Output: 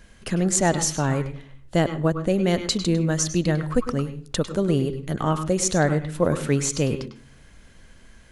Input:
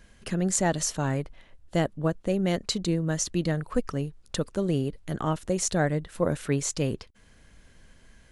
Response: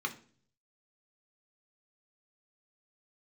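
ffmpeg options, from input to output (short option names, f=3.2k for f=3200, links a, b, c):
-filter_complex "[0:a]asplit=2[a][b];[1:a]atrim=start_sample=2205,adelay=100[c];[b][c]afir=irnorm=-1:irlink=0,volume=-12dB[d];[a][d]amix=inputs=2:normalize=0,volume=4.5dB"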